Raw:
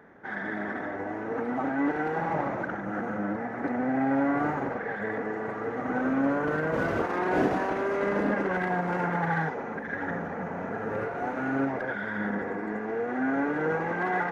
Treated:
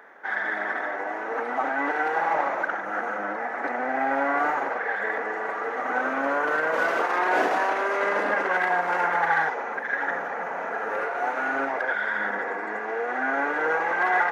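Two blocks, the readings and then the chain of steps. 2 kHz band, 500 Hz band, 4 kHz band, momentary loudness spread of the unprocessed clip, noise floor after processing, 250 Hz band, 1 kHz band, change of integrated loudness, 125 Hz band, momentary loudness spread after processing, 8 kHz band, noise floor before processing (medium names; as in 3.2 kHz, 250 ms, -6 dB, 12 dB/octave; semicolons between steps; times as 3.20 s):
+8.0 dB, +1.5 dB, +8.0 dB, 7 LU, -32 dBFS, -8.0 dB, +6.5 dB, +4.0 dB, -16.5 dB, 7 LU, no reading, -36 dBFS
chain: high-pass 680 Hz 12 dB/octave; trim +8 dB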